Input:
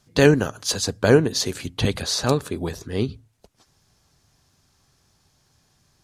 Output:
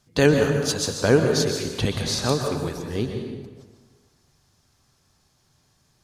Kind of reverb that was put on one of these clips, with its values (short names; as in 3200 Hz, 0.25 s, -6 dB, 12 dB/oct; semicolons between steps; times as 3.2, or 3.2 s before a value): plate-style reverb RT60 1.4 s, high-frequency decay 0.7×, pre-delay 0.11 s, DRR 3.5 dB; gain -2.5 dB